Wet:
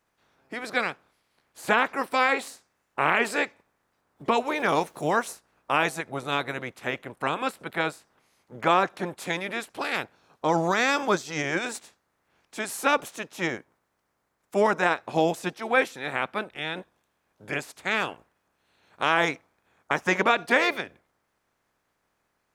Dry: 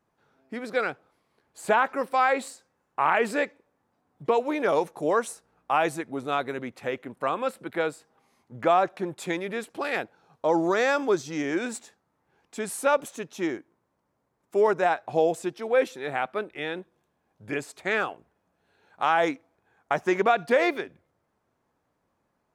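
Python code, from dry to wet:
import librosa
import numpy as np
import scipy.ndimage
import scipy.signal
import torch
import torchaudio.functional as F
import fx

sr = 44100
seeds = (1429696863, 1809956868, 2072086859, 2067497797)

y = fx.spec_clip(x, sr, under_db=15)
y = fx.quant_dither(y, sr, seeds[0], bits=10, dither='none', at=(4.55, 5.31))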